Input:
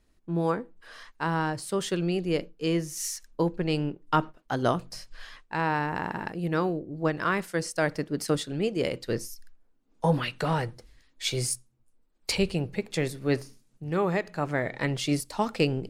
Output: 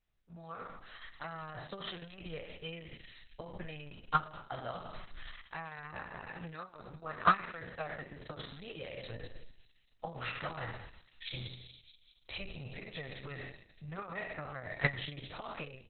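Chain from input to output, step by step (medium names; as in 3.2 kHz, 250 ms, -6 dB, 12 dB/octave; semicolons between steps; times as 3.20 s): spectral sustain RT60 0.67 s; compression 10:1, threshold -27 dBFS, peak gain reduction 11 dB; peaking EQ 320 Hz -9.5 dB 1.9 oct; feedback echo behind a high-pass 207 ms, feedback 54%, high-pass 5 kHz, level -3 dB; level rider gain up to 14 dB; peaking EQ 6.5 kHz -6.5 dB 0.8 oct; comb 1.6 ms, depth 55%; gate -13 dBFS, range -33 dB; trim +14 dB; Opus 6 kbps 48 kHz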